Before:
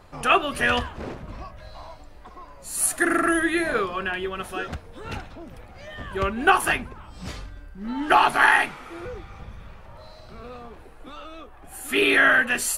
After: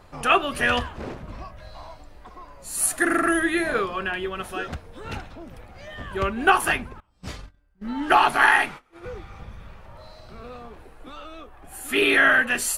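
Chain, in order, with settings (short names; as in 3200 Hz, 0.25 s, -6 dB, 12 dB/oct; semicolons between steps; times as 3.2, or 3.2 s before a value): 7–9.1 gate -35 dBFS, range -23 dB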